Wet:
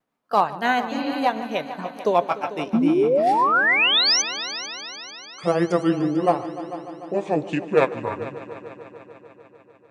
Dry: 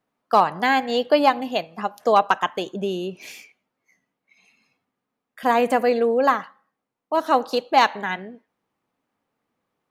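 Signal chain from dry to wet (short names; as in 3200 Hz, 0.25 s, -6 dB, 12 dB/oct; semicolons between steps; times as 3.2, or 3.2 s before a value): gliding pitch shift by -11.5 st starting unshifted; vibrato 1.1 Hz 34 cents; painted sound rise, 2.73–4.22, 210–6300 Hz -17 dBFS; tremolo 7.3 Hz, depth 31%; spectral repair 0.95–1.15, 260–5000 Hz after; on a send: multi-head echo 0.148 s, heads all three, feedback 62%, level -18 dB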